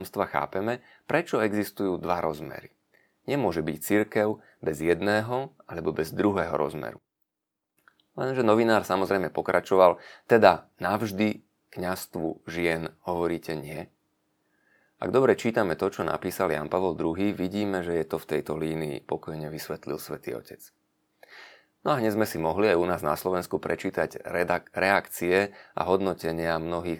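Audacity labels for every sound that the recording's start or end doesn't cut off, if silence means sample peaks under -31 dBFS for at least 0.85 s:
8.180000	13.820000	sound
15.020000	20.540000	sound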